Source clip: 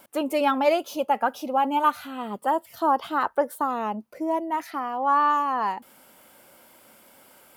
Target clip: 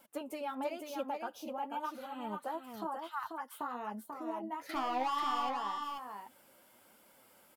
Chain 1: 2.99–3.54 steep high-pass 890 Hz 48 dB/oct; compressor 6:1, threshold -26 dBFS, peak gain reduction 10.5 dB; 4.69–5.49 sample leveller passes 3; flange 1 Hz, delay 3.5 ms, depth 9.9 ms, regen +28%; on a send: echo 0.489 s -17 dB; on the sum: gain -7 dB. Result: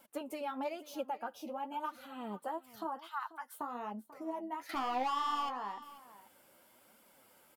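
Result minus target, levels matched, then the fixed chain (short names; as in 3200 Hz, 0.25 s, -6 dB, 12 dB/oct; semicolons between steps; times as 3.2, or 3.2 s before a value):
echo-to-direct -12 dB
2.99–3.54 steep high-pass 890 Hz 48 dB/oct; compressor 6:1, threshold -26 dBFS, peak gain reduction 10.5 dB; 4.69–5.49 sample leveller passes 3; flange 1 Hz, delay 3.5 ms, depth 9.9 ms, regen +28%; on a send: echo 0.489 s -5 dB; on the sum: gain -7 dB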